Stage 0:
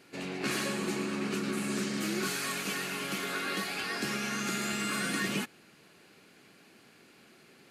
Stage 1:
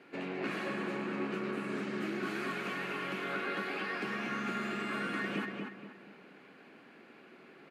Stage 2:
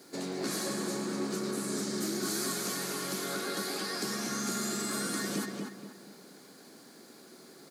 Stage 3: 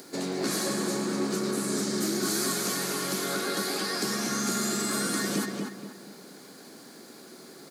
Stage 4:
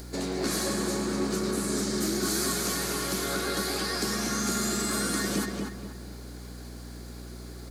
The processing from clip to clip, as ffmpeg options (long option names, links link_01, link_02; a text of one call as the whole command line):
ffmpeg -i in.wav -filter_complex "[0:a]acompressor=threshold=-37dB:ratio=2.5,acrossover=split=160 2900:gain=0.126 1 0.1[link_01][link_02][link_03];[link_01][link_02][link_03]amix=inputs=3:normalize=0,asplit=2[link_04][link_05];[link_05]adelay=237,lowpass=frequency=2600:poles=1,volume=-3dB,asplit=2[link_06][link_07];[link_07]adelay=237,lowpass=frequency=2600:poles=1,volume=0.38,asplit=2[link_08][link_09];[link_09]adelay=237,lowpass=frequency=2600:poles=1,volume=0.38,asplit=2[link_10][link_11];[link_11]adelay=237,lowpass=frequency=2600:poles=1,volume=0.38,asplit=2[link_12][link_13];[link_13]adelay=237,lowpass=frequency=2600:poles=1,volume=0.38[link_14];[link_04][link_06][link_08][link_10][link_12][link_14]amix=inputs=6:normalize=0,volume=2.5dB" out.wav
ffmpeg -i in.wav -filter_complex "[0:a]tiltshelf=frequency=1400:gain=5,aexciter=amount=15.4:drive=9.1:freq=4300,asplit=2[link_01][link_02];[link_02]asoftclip=type=tanh:threshold=-27.5dB,volume=-9.5dB[link_03];[link_01][link_03]amix=inputs=2:normalize=0,volume=-4dB" out.wav
ffmpeg -i in.wav -af "acompressor=mode=upward:threshold=-50dB:ratio=2.5,volume=5dB" out.wav
ffmpeg -i in.wav -af "aeval=exprs='val(0)+0.00891*(sin(2*PI*60*n/s)+sin(2*PI*2*60*n/s)/2+sin(2*PI*3*60*n/s)/3+sin(2*PI*4*60*n/s)/4+sin(2*PI*5*60*n/s)/5)':channel_layout=same" out.wav